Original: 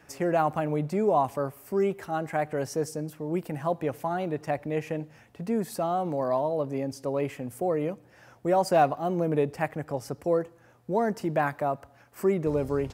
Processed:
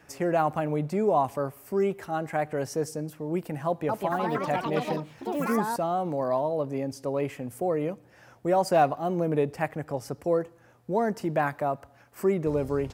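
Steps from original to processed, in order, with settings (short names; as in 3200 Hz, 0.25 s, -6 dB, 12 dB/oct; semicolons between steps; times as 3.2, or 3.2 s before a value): 3.66–6.02 echoes that change speed 0.229 s, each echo +4 st, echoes 3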